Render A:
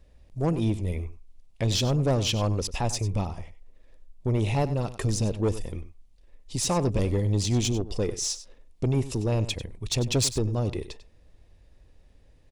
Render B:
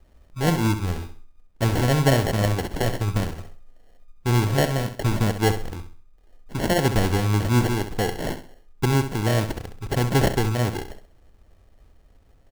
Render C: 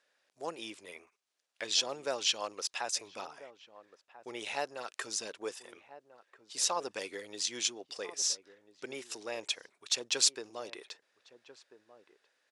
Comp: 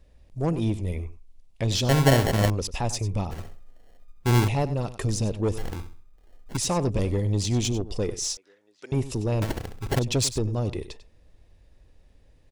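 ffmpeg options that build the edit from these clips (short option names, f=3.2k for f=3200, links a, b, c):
-filter_complex "[1:a]asplit=4[a][b][c][d];[0:a]asplit=6[e][f][g][h][i][j];[e]atrim=end=1.892[k];[a]atrim=start=1.888:end=2.502[l];[f]atrim=start=2.498:end=3.312[m];[b]atrim=start=3.308:end=4.482[n];[g]atrim=start=4.478:end=5.582[o];[c]atrim=start=5.578:end=6.572[p];[h]atrim=start=6.568:end=8.372[q];[2:a]atrim=start=8.368:end=8.922[r];[i]atrim=start=8.918:end=9.422[s];[d]atrim=start=9.418:end=9.992[t];[j]atrim=start=9.988[u];[k][l]acrossfade=d=0.004:c1=hsin:c2=hsin[v];[v][m]acrossfade=d=0.004:c1=hsin:c2=hsin[w];[w][n]acrossfade=d=0.004:c1=hsin:c2=hsin[x];[x][o]acrossfade=d=0.004:c1=hsin:c2=hsin[y];[y][p]acrossfade=d=0.004:c1=hsin:c2=hsin[z];[z][q]acrossfade=d=0.004:c1=hsin:c2=hsin[aa];[aa][r]acrossfade=d=0.004:c1=hsin:c2=hsin[ab];[ab][s]acrossfade=d=0.004:c1=hsin:c2=hsin[ac];[ac][t]acrossfade=d=0.004:c1=hsin:c2=hsin[ad];[ad][u]acrossfade=d=0.004:c1=hsin:c2=hsin"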